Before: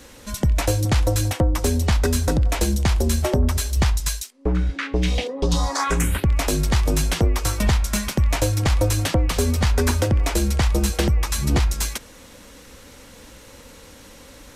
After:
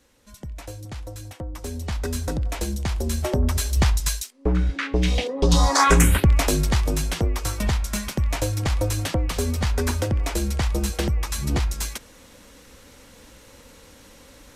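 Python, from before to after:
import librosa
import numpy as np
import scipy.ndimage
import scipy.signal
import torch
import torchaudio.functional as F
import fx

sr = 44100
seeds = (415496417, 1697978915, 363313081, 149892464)

y = fx.gain(x, sr, db=fx.line((1.25, -16.5), (2.16, -6.5), (2.93, -6.5), (3.68, 0.0), (5.24, 0.0), (5.86, 6.5), (7.01, -4.0)))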